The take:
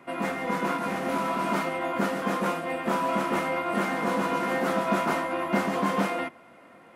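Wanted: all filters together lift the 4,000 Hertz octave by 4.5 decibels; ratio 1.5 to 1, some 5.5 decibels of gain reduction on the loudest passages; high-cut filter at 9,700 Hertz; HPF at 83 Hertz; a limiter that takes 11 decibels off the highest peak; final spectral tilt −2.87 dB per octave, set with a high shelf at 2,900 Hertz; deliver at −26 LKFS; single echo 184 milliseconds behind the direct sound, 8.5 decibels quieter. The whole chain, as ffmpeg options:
ffmpeg -i in.wav -af "highpass=83,lowpass=9700,highshelf=frequency=2900:gain=3.5,equalizer=frequency=4000:width_type=o:gain=3.5,acompressor=threshold=-36dB:ratio=1.5,alimiter=level_in=4dB:limit=-24dB:level=0:latency=1,volume=-4dB,aecho=1:1:184:0.376,volume=9.5dB" out.wav

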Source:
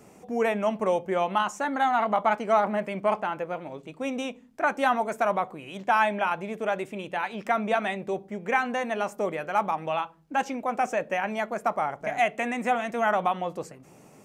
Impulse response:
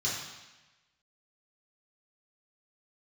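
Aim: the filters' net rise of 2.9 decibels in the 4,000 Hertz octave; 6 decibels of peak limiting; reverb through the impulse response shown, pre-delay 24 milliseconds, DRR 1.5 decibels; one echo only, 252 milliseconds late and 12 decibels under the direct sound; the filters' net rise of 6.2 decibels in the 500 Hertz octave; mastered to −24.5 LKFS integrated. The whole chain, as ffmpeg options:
-filter_complex "[0:a]equalizer=frequency=500:width_type=o:gain=8,equalizer=frequency=4000:width_type=o:gain=4,alimiter=limit=-13dB:level=0:latency=1,aecho=1:1:252:0.251,asplit=2[link_01][link_02];[1:a]atrim=start_sample=2205,adelay=24[link_03];[link_02][link_03]afir=irnorm=-1:irlink=0,volume=-8.5dB[link_04];[link_01][link_04]amix=inputs=2:normalize=0,volume=-1.5dB"

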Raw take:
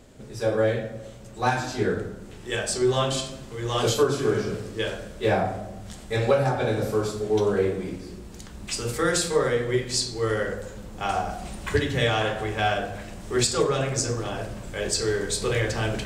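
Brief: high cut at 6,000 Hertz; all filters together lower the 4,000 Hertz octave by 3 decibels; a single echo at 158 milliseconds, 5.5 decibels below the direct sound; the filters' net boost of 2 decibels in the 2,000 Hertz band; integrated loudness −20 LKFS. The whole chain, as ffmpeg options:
ffmpeg -i in.wav -af "lowpass=6000,equalizer=frequency=2000:width_type=o:gain=3.5,equalizer=frequency=4000:width_type=o:gain=-4,aecho=1:1:158:0.531,volume=5dB" out.wav

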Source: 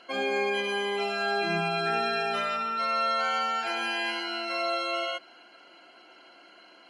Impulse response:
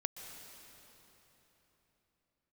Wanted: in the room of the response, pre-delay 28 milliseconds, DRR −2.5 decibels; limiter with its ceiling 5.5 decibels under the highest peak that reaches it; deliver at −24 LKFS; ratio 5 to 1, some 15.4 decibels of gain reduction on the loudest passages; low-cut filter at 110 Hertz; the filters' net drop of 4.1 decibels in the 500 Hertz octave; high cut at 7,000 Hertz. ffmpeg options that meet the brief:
-filter_complex "[0:a]highpass=110,lowpass=7000,equalizer=frequency=500:width_type=o:gain=-6,acompressor=threshold=-44dB:ratio=5,alimiter=level_in=14dB:limit=-24dB:level=0:latency=1,volume=-14dB,asplit=2[link_01][link_02];[1:a]atrim=start_sample=2205,adelay=28[link_03];[link_02][link_03]afir=irnorm=-1:irlink=0,volume=2.5dB[link_04];[link_01][link_04]amix=inputs=2:normalize=0,volume=17dB"

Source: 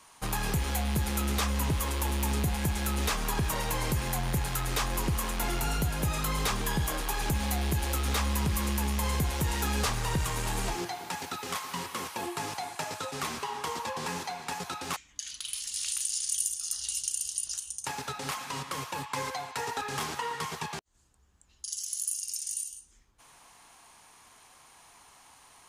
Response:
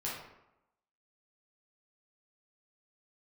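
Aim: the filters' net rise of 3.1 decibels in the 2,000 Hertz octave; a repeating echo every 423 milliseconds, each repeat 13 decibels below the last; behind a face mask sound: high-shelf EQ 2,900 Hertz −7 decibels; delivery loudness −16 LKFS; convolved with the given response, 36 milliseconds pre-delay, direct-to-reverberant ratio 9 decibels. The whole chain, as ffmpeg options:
-filter_complex "[0:a]equalizer=frequency=2000:width_type=o:gain=6.5,aecho=1:1:423|846|1269:0.224|0.0493|0.0108,asplit=2[link_01][link_02];[1:a]atrim=start_sample=2205,adelay=36[link_03];[link_02][link_03]afir=irnorm=-1:irlink=0,volume=-12dB[link_04];[link_01][link_04]amix=inputs=2:normalize=0,highshelf=frequency=2900:gain=-7,volume=16dB"

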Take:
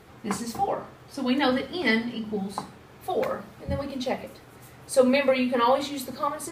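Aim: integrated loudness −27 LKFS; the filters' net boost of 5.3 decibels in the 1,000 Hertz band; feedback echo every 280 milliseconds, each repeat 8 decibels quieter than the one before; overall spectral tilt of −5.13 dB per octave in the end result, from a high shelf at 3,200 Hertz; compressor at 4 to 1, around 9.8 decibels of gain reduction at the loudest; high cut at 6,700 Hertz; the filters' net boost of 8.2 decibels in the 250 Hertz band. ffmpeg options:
ffmpeg -i in.wav -af "lowpass=6700,equalizer=frequency=250:width_type=o:gain=8.5,equalizer=frequency=1000:width_type=o:gain=6.5,highshelf=frequency=3200:gain=-4.5,acompressor=threshold=-23dB:ratio=4,aecho=1:1:280|560|840|1120|1400:0.398|0.159|0.0637|0.0255|0.0102,volume=0.5dB" out.wav

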